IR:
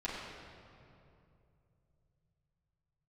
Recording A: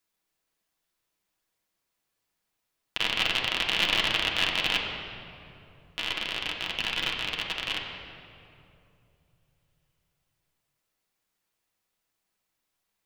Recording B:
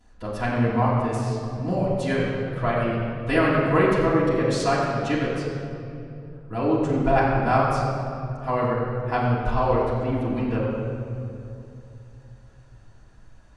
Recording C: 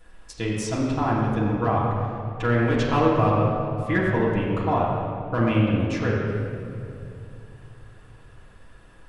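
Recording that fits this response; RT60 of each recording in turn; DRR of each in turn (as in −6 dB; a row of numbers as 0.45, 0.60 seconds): C; 2.7, 2.7, 2.7 seconds; −2.0, −15.5, −9.5 decibels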